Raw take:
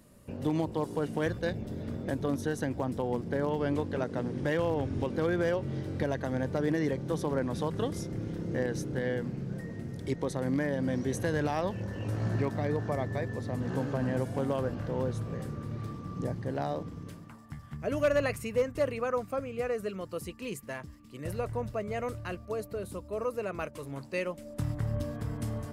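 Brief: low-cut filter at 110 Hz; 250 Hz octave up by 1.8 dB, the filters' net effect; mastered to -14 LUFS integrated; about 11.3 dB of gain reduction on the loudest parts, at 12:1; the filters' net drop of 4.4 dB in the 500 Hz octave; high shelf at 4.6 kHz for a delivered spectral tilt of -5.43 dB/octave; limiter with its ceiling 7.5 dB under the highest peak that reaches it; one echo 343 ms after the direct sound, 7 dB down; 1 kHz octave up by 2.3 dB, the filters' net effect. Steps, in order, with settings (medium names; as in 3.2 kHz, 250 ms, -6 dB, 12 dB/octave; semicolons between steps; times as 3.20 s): high-pass 110 Hz; peaking EQ 250 Hz +4.5 dB; peaking EQ 500 Hz -7.5 dB; peaking EQ 1 kHz +5 dB; treble shelf 4.6 kHz +6 dB; compression 12:1, threshold -36 dBFS; peak limiter -31.5 dBFS; delay 343 ms -7 dB; trim +27.5 dB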